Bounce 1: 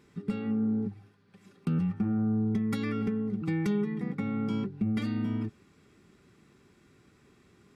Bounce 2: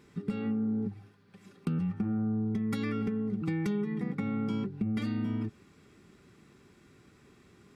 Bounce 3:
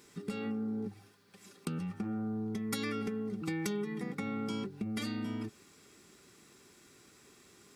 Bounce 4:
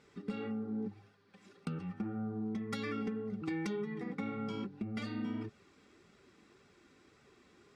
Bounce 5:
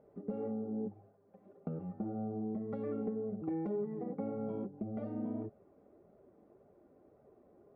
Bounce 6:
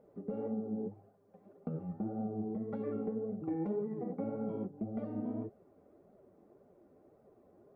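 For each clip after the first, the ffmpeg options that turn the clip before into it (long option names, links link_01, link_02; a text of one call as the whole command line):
ffmpeg -i in.wav -af "acompressor=threshold=-31dB:ratio=3,volume=2dB" out.wav
ffmpeg -i in.wav -af "bass=frequency=250:gain=-9,treble=frequency=4000:gain=12" out.wav
ffmpeg -i in.wav -af "adynamicsmooth=sensitivity=2.5:basefreq=3900,flanger=delay=1.4:depth=2.6:regen=-35:speed=1.8:shape=sinusoidal,volume=2.5dB" out.wav
ffmpeg -i in.wav -af "lowpass=frequency=630:width_type=q:width=4.9,volume=-2dB" out.wav
ffmpeg -i in.wav -af "flanger=delay=3.7:depth=8.9:regen=60:speed=1.8:shape=triangular,volume=4.5dB" out.wav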